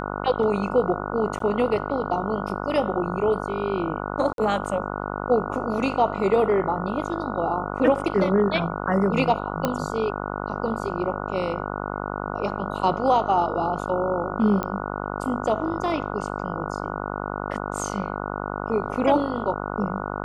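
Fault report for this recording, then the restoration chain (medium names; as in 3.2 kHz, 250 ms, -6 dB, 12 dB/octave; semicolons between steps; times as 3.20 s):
buzz 50 Hz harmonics 29 -30 dBFS
1.39–1.40 s: dropout 13 ms
4.33–4.38 s: dropout 52 ms
9.65 s: pop -9 dBFS
14.63 s: pop -14 dBFS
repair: de-click; de-hum 50 Hz, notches 29; interpolate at 1.39 s, 13 ms; interpolate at 4.33 s, 52 ms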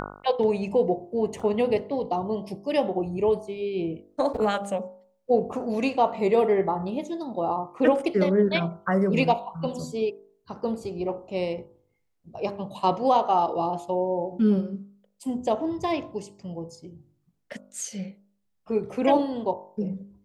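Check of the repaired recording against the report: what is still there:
nothing left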